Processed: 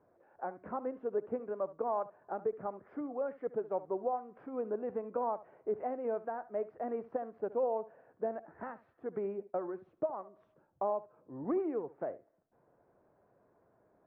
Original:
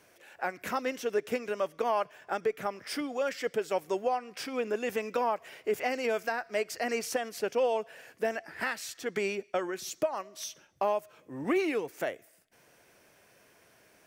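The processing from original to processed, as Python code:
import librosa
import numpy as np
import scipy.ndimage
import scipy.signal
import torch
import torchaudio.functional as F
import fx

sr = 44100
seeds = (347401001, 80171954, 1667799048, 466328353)

p1 = scipy.signal.sosfilt(scipy.signal.butter(4, 1100.0, 'lowpass', fs=sr, output='sos'), x)
p2 = p1 + fx.echo_single(p1, sr, ms=71, db=-16.5, dry=0)
y = p2 * 10.0 ** (-4.5 / 20.0)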